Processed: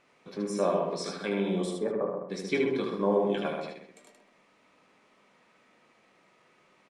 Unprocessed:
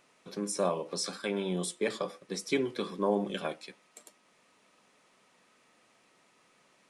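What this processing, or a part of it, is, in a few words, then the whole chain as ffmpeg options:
slapback doubling: -filter_complex "[0:a]aemphasis=mode=reproduction:type=50fm,asplit=3[a][b][c];[a]afade=t=out:st=1.74:d=0.02[d];[b]lowpass=f=1.3k:w=0.5412,lowpass=f=1.3k:w=1.3066,afade=t=in:st=1.74:d=0.02,afade=t=out:st=2.28:d=0.02[e];[c]afade=t=in:st=2.28:d=0.02[f];[d][e][f]amix=inputs=3:normalize=0,equalizer=f=2.2k:w=4.9:g=3.5,asplit=3[g][h][i];[h]adelay=20,volume=-8.5dB[j];[i]adelay=76,volume=-4.5dB[k];[g][j][k]amix=inputs=3:normalize=0,asplit=2[l][m];[m]adelay=130,lowpass=f=1.1k:p=1,volume=-3dB,asplit=2[n][o];[o]adelay=130,lowpass=f=1.1k:p=1,volume=0.27,asplit=2[p][q];[q]adelay=130,lowpass=f=1.1k:p=1,volume=0.27,asplit=2[r][s];[s]adelay=130,lowpass=f=1.1k:p=1,volume=0.27[t];[l][n][p][r][t]amix=inputs=5:normalize=0"

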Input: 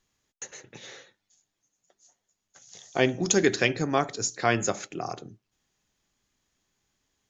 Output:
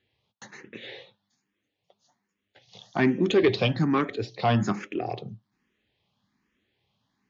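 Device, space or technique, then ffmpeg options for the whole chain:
barber-pole phaser into a guitar amplifier: -filter_complex "[0:a]asplit=2[a][b];[b]afreqshift=1.2[c];[a][c]amix=inputs=2:normalize=1,asoftclip=type=tanh:threshold=-20dB,highpass=81,equalizer=f=110:t=q:w=4:g=4,equalizer=f=210:t=q:w=4:g=6,equalizer=f=660:t=q:w=4:g=-3,equalizer=f=1.4k:t=q:w=4:g=-5,lowpass=f=3.9k:w=0.5412,lowpass=f=3.9k:w=1.3066,volume=7dB"

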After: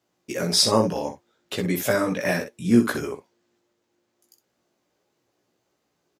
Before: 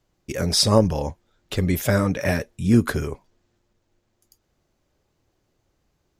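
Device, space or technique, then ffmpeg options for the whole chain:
slapback doubling: -filter_complex "[0:a]asplit=3[a][b][c];[b]adelay=17,volume=-3.5dB[d];[c]adelay=63,volume=-9dB[e];[a][d][e]amix=inputs=3:normalize=0,highpass=210,volume=-1.5dB"

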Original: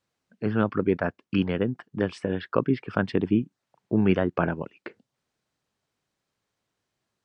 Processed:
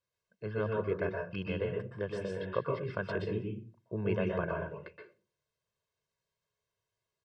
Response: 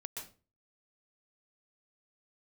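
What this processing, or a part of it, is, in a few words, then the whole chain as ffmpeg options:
microphone above a desk: -filter_complex "[0:a]aecho=1:1:1.9:0.85[a];[1:a]atrim=start_sample=2205[b];[a][b]afir=irnorm=-1:irlink=0,volume=-7.5dB"

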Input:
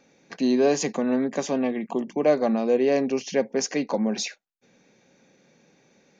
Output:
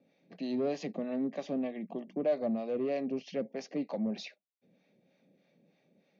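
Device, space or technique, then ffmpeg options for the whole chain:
guitar amplifier with harmonic tremolo: -filter_complex "[0:a]acrossover=split=610[a][b];[a]aeval=exprs='val(0)*(1-0.7/2+0.7/2*cos(2*PI*3.2*n/s))':c=same[c];[b]aeval=exprs='val(0)*(1-0.7/2-0.7/2*cos(2*PI*3.2*n/s))':c=same[d];[c][d]amix=inputs=2:normalize=0,asoftclip=type=tanh:threshold=-20dB,highpass=81,equalizer=f=180:t=q:w=4:g=8,equalizer=f=280:t=q:w=4:g=4,equalizer=f=620:t=q:w=4:g=8,equalizer=f=970:t=q:w=4:g=-7,equalizer=f=1.5k:t=q:w=4:g=-8,lowpass=f=4.3k:w=0.5412,lowpass=f=4.3k:w=1.3066,volume=-8.5dB"

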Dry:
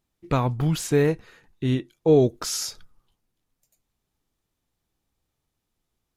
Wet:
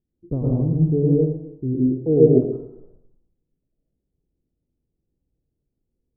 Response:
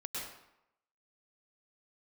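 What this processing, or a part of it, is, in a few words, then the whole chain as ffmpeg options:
next room: -filter_complex "[0:a]lowpass=f=460:w=0.5412,lowpass=f=460:w=1.3066[a];[1:a]atrim=start_sample=2205[b];[a][b]afir=irnorm=-1:irlink=0,volume=4dB"

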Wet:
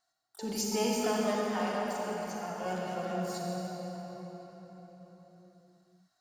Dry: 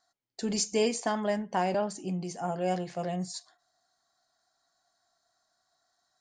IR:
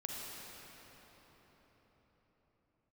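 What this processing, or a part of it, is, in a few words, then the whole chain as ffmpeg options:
shimmer-style reverb: -filter_complex "[0:a]asettb=1/sr,asplit=3[a][b][c];[a]atrim=end=1.354[d];[b]atrim=start=1.35:end=2.66,asetpts=PTS-STARTPTS,afade=t=in:d=0.004:c=qsin,afade=t=out:st=1.306:d=0.004:c=qsin,equalizer=f=270:t=o:w=1.9:g=-13.5[e];[c]atrim=start=2.656[f];[d][e]acrossfade=d=0.004:c1=hsin:c2=qsin[g];[g][f]acrossfade=d=0.004:c1=qsin:c2=hsin,asplit=2[h][i];[i]asetrate=88200,aresample=44100,atempo=0.5,volume=-10dB[j];[h][j]amix=inputs=2:normalize=0[k];[1:a]atrim=start_sample=2205[l];[k][l]afir=irnorm=-1:irlink=0,volume=-2dB"

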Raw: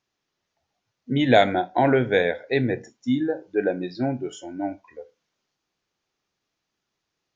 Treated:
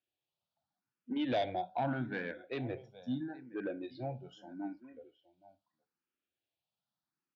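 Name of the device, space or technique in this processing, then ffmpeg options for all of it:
barber-pole phaser into a guitar amplifier: -filter_complex "[0:a]aecho=1:1:820:0.112,asplit=2[a][b];[b]afreqshift=0.79[c];[a][c]amix=inputs=2:normalize=1,asoftclip=type=tanh:threshold=-16.5dB,highpass=83,equalizer=f=430:t=q:w=4:g=-8,equalizer=f=1.1k:t=q:w=4:g=-5,equalizer=f=2k:t=q:w=4:g=-9,lowpass=f=4.2k:w=0.5412,lowpass=f=4.2k:w=1.3066,volume=-8.5dB"

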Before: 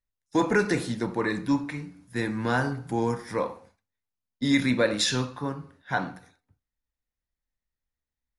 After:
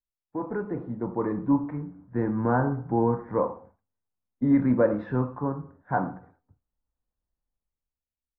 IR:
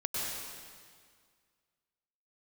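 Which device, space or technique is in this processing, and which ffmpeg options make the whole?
action camera in a waterproof case: -filter_complex "[0:a]asettb=1/sr,asplit=3[a][b][c];[a]atrim=end=0.634[d];[b]atrim=start=0.63:end=1.72,asetpts=PTS-STARTPTS,afade=t=in:d=0.004:c=qsin,afade=t=out:st=1.086:d=0.004:c=qsin,equalizer=f=1.6k:t=o:w=0.33:g=-5.5[e];[c]atrim=start=1.716[f];[d][e]acrossfade=d=0.004:c1=hsin:c2=qsin[g];[g][f]acrossfade=d=0.004:c1=qsin:c2=hsin,lowpass=f=1.2k:w=0.5412,lowpass=f=1.2k:w=1.3066,dynaudnorm=f=180:g=11:m=14dB,volume=-9dB" -ar 22050 -c:a aac -b:a 64k

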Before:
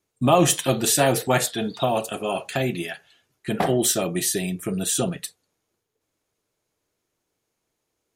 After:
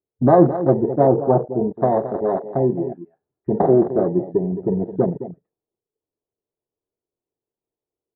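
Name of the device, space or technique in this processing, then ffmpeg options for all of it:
under water: -filter_complex "[0:a]lowpass=f=980:w=0.5412,lowpass=f=980:w=1.3066,equalizer=f=400:t=o:w=0.56:g=6.5,asplit=2[a][b];[b]adelay=215.7,volume=-12dB,highshelf=f=4k:g=-4.85[c];[a][c]amix=inputs=2:normalize=0,afwtdn=0.0501,asettb=1/sr,asplit=3[d][e][f];[d]atrim=end=1.074[g];[e]atrim=start=1.07:end=1.71,asetpts=PTS-STARTPTS,afade=t=in:d=0.004:c=qsin,afade=t=out:st=0.636:d=0.004:c=qsin,lowpass=f=1.3k:w=0.5412,lowpass=f=1.3k:w=1.3066[h];[f]atrim=start=1.706[i];[g][h]acrossfade=d=0.004:c1=hsin:c2=qsin[j];[j][i]acrossfade=d=0.004:c1=qsin:c2=hsin,volume=3.5dB"

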